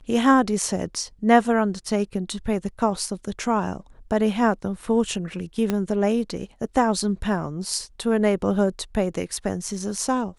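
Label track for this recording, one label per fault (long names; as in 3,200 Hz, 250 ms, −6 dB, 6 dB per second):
5.700000	5.700000	click −10 dBFS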